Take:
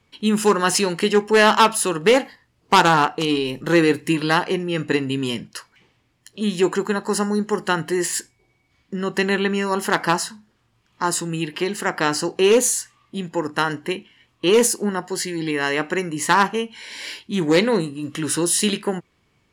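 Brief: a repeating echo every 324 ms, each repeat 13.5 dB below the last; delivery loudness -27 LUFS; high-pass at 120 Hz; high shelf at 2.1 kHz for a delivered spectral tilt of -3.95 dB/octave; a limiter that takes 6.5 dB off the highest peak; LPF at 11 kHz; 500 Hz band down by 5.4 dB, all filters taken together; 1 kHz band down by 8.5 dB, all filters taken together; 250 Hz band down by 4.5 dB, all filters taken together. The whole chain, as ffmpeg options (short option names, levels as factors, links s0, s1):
-af "highpass=120,lowpass=11000,equalizer=f=250:t=o:g=-4,equalizer=f=500:t=o:g=-3.5,equalizer=f=1000:t=o:g=-8,highshelf=f=2100:g=-6,alimiter=limit=0.237:level=0:latency=1,aecho=1:1:324|648:0.211|0.0444,volume=0.944"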